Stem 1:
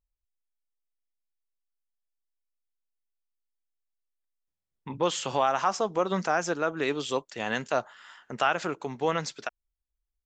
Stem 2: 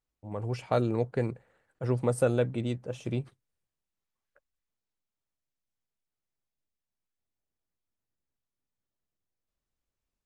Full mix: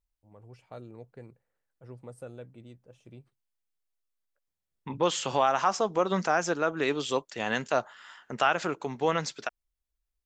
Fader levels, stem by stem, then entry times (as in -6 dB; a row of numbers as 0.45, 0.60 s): +0.5, -18.0 dB; 0.00, 0.00 s